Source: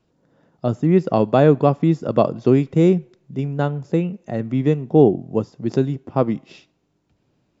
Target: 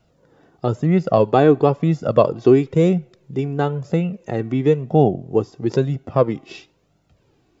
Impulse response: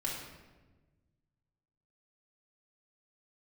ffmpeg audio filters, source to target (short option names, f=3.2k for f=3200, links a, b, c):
-filter_complex "[0:a]asplit=2[a][b];[b]acompressor=threshold=-27dB:ratio=6,volume=0.5dB[c];[a][c]amix=inputs=2:normalize=0,flanger=delay=1.4:depth=1.3:regen=20:speed=1:shape=sinusoidal,volume=3.5dB"